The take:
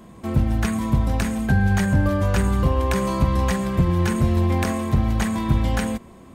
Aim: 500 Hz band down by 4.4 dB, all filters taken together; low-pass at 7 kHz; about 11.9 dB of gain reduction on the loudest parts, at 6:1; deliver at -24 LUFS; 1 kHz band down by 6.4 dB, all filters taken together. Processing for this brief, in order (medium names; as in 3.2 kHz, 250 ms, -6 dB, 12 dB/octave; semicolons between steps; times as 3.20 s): low-pass 7 kHz; peaking EQ 500 Hz -4 dB; peaking EQ 1 kHz -6.5 dB; compression 6:1, threshold -27 dBFS; trim +7.5 dB